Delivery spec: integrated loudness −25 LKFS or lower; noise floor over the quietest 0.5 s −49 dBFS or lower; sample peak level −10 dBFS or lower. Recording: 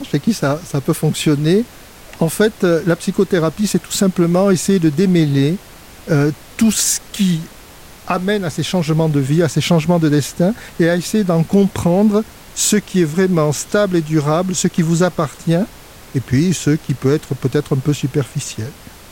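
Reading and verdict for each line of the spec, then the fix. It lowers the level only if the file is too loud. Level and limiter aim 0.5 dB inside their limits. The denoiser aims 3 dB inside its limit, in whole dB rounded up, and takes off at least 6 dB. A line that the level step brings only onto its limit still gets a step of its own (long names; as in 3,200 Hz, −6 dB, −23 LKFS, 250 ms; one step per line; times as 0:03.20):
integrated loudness −16.5 LKFS: out of spec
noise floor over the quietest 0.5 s −39 dBFS: out of spec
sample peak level −4.0 dBFS: out of spec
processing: broadband denoise 6 dB, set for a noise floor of −39 dBFS
level −9 dB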